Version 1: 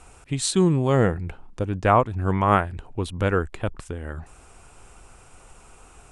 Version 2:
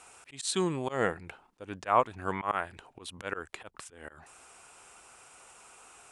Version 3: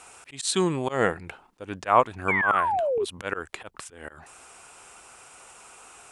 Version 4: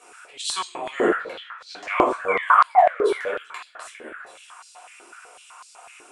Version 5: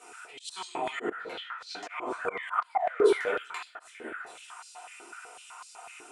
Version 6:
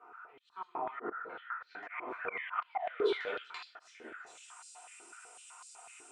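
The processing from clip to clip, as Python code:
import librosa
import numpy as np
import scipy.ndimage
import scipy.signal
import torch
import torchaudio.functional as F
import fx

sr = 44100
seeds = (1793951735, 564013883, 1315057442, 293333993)

y1 = fx.highpass(x, sr, hz=920.0, slope=6)
y1 = fx.auto_swell(y1, sr, attack_ms=146.0)
y2 = fx.spec_paint(y1, sr, seeds[0], shape='fall', start_s=2.28, length_s=0.77, low_hz=380.0, high_hz=2400.0, level_db=-30.0)
y2 = y2 * 10.0 ** (5.5 / 20.0)
y3 = fx.echo_stepped(y2, sr, ms=405, hz=1600.0, octaves=0.7, feedback_pct=70, wet_db=-11)
y3 = fx.room_shoebox(y3, sr, seeds[1], volume_m3=500.0, walls='furnished', distance_m=5.7)
y3 = fx.filter_held_highpass(y3, sr, hz=8.0, low_hz=340.0, high_hz=4500.0)
y3 = y3 * 10.0 ** (-9.0 / 20.0)
y4 = fx.auto_swell(y3, sr, attack_ms=262.0)
y4 = fx.notch_comb(y4, sr, f0_hz=560.0)
y5 = fx.filter_sweep_lowpass(y4, sr, from_hz=1200.0, to_hz=8200.0, start_s=1.06, end_s=4.64, q=3.1)
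y5 = y5 * 10.0 ** (-9.0 / 20.0)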